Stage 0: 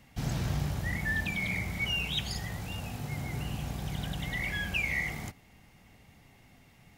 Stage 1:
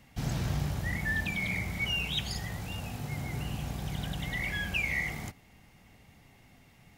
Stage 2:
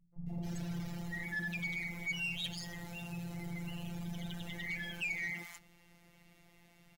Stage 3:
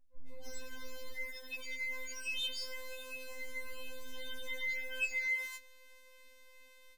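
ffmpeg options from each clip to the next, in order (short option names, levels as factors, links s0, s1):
-af anull
-filter_complex "[0:a]acrossover=split=150|920[s0][s1][s2];[s1]adelay=130[s3];[s2]adelay=270[s4];[s0][s3][s4]amix=inputs=3:normalize=0,afftfilt=real='hypot(re,im)*cos(PI*b)':imag='0':win_size=1024:overlap=0.75,asoftclip=type=tanh:threshold=0.0299"
-af "afftfilt=real='re*3.46*eq(mod(b,12),0)':imag='im*3.46*eq(mod(b,12),0)':win_size=2048:overlap=0.75,volume=1.19"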